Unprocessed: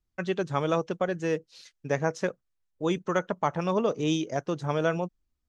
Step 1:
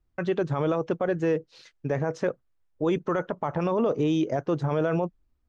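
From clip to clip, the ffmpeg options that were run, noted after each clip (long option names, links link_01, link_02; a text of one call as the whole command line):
ffmpeg -i in.wav -af "lowpass=frequency=1300:poles=1,equalizer=frequency=190:width=5.1:gain=-6.5,alimiter=level_in=1dB:limit=-24dB:level=0:latency=1:release=27,volume=-1dB,volume=8.5dB" out.wav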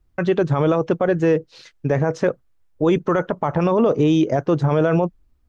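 ffmpeg -i in.wav -af "lowshelf=frequency=160:gain=3.5,volume=7dB" out.wav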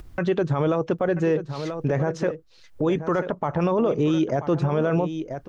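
ffmpeg -i in.wav -af "acompressor=mode=upward:threshold=-27dB:ratio=2.5,aecho=1:1:985:0.237,alimiter=limit=-13.5dB:level=0:latency=1:release=180" out.wav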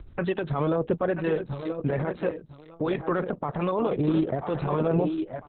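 ffmpeg -i in.wav -filter_complex "[0:a]asplit=2[link_01][link_02];[link_02]aecho=0:1:1001:0.282[link_03];[link_01][link_03]amix=inputs=2:normalize=0,acrossover=split=590[link_04][link_05];[link_04]aeval=exprs='val(0)*(1-0.5/2+0.5/2*cos(2*PI*1.2*n/s))':channel_layout=same[link_06];[link_05]aeval=exprs='val(0)*(1-0.5/2-0.5/2*cos(2*PI*1.2*n/s))':channel_layout=same[link_07];[link_06][link_07]amix=inputs=2:normalize=0" -ar 48000 -c:a libopus -b:a 6k out.opus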